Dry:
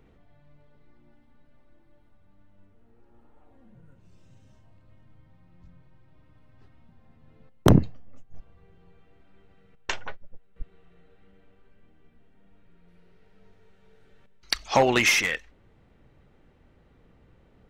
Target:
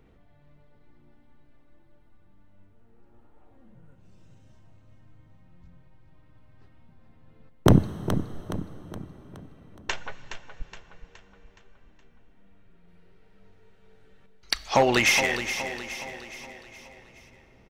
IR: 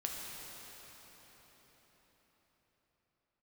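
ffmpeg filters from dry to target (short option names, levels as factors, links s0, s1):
-filter_complex "[0:a]aecho=1:1:419|838|1257|1676|2095:0.316|0.155|0.0759|0.0372|0.0182,asplit=2[s0][s1];[1:a]atrim=start_sample=2205[s2];[s1][s2]afir=irnorm=-1:irlink=0,volume=0.211[s3];[s0][s3]amix=inputs=2:normalize=0,volume=0.841"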